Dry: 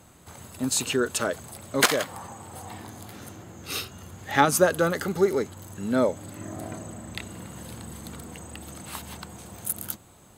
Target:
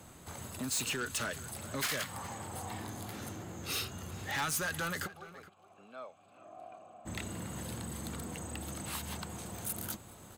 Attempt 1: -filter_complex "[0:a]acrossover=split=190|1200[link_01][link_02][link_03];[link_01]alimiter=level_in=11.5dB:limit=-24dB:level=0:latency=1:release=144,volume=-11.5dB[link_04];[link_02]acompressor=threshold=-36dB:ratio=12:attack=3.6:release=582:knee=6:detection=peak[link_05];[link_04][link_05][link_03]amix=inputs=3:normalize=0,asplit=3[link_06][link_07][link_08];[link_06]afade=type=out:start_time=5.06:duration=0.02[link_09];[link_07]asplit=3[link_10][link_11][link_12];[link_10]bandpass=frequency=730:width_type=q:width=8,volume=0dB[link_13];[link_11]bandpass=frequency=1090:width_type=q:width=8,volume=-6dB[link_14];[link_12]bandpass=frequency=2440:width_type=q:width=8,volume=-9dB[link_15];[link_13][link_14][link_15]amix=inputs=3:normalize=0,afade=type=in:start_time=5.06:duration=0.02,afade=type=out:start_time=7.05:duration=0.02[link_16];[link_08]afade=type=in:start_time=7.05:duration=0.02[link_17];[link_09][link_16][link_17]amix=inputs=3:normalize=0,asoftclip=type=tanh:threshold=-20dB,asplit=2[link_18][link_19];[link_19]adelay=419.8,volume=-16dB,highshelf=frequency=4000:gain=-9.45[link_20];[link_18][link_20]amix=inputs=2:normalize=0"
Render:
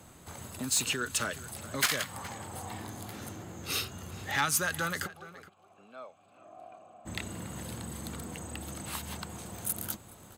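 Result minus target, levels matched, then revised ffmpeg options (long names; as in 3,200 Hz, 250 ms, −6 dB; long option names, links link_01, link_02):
soft clipping: distortion −6 dB
-filter_complex "[0:a]acrossover=split=190|1200[link_01][link_02][link_03];[link_01]alimiter=level_in=11.5dB:limit=-24dB:level=0:latency=1:release=144,volume=-11.5dB[link_04];[link_02]acompressor=threshold=-36dB:ratio=12:attack=3.6:release=582:knee=6:detection=peak[link_05];[link_04][link_05][link_03]amix=inputs=3:normalize=0,asplit=3[link_06][link_07][link_08];[link_06]afade=type=out:start_time=5.06:duration=0.02[link_09];[link_07]asplit=3[link_10][link_11][link_12];[link_10]bandpass=frequency=730:width_type=q:width=8,volume=0dB[link_13];[link_11]bandpass=frequency=1090:width_type=q:width=8,volume=-6dB[link_14];[link_12]bandpass=frequency=2440:width_type=q:width=8,volume=-9dB[link_15];[link_13][link_14][link_15]amix=inputs=3:normalize=0,afade=type=in:start_time=5.06:duration=0.02,afade=type=out:start_time=7.05:duration=0.02[link_16];[link_08]afade=type=in:start_time=7.05:duration=0.02[link_17];[link_09][link_16][link_17]amix=inputs=3:normalize=0,asoftclip=type=tanh:threshold=-30.5dB,asplit=2[link_18][link_19];[link_19]adelay=419.8,volume=-16dB,highshelf=frequency=4000:gain=-9.45[link_20];[link_18][link_20]amix=inputs=2:normalize=0"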